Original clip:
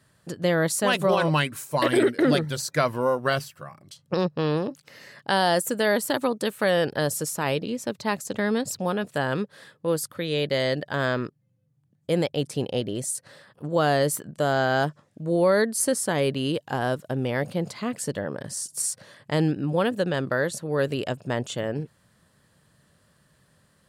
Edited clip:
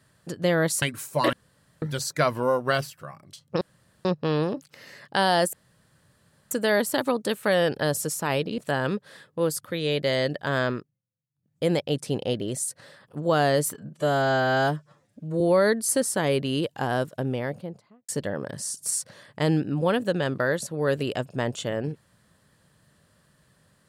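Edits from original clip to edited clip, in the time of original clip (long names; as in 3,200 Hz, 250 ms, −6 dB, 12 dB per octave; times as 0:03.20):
0:00.82–0:01.40: remove
0:01.91–0:02.40: fill with room tone
0:04.19: splice in room tone 0.44 s
0:05.67: splice in room tone 0.98 s
0:07.74–0:09.05: remove
0:11.17–0:12.11: duck −22 dB, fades 0.31 s
0:14.21–0:15.32: time-stretch 1.5×
0:17.01–0:18.00: fade out and dull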